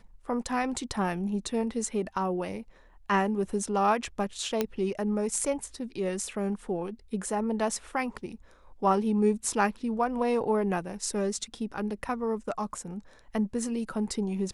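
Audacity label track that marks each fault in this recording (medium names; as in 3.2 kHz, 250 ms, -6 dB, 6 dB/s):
4.610000	4.610000	pop -12 dBFS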